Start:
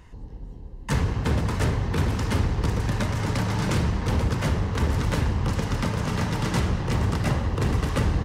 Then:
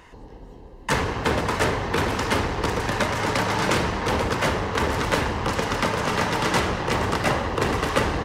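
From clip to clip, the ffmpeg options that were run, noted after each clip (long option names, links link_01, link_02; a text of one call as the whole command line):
ffmpeg -i in.wav -af "bass=frequency=250:gain=-15,treble=frequency=4000:gain=-4,volume=8.5dB" out.wav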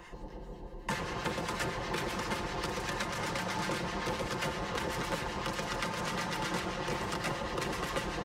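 ffmpeg -i in.wav -filter_complex "[0:a]aecho=1:1:5.7:0.59,acrossover=split=290|2900[link_01][link_02][link_03];[link_01]acompressor=threshold=-39dB:ratio=4[link_04];[link_02]acompressor=threshold=-34dB:ratio=4[link_05];[link_03]acompressor=threshold=-41dB:ratio=4[link_06];[link_04][link_05][link_06]amix=inputs=3:normalize=0,acrossover=split=1200[link_07][link_08];[link_07]aeval=exprs='val(0)*(1-0.5/2+0.5/2*cos(2*PI*7.8*n/s))':channel_layout=same[link_09];[link_08]aeval=exprs='val(0)*(1-0.5/2-0.5/2*cos(2*PI*7.8*n/s))':channel_layout=same[link_10];[link_09][link_10]amix=inputs=2:normalize=0" out.wav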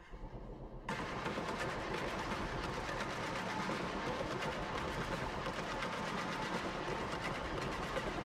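ffmpeg -i in.wav -filter_complex "[0:a]flanger=delay=0.6:depth=4.3:regen=72:speed=0.4:shape=sinusoidal,highshelf=frequency=5800:gain=-10.5,asplit=9[link_01][link_02][link_03][link_04][link_05][link_06][link_07][link_08][link_09];[link_02]adelay=101,afreqshift=89,volume=-6.5dB[link_10];[link_03]adelay=202,afreqshift=178,volume=-11.1dB[link_11];[link_04]adelay=303,afreqshift=267,volume=-15.7dB[link_12];[link_05]adelay=404,afreqshift=356,volume=-20.2dB[link_13];[link_06]adelay=505,afreqshift=445,volume=-24.8dB[link_14];[link_07]adelay=606,afreqshift=534,volume=-29.4dB[link_15];[link_08]adelay=707,afreqshift=623,volume=-34dB[link_16];[link_09]adelay=808,afreqshift=712,volume=-38.6dB[link_17];[link_01][link_10][link_11][link_12][link_13][link_14][link_15][link_16][link_17]amix=inputs=9:normalize=0,volume=-1dB" out.wav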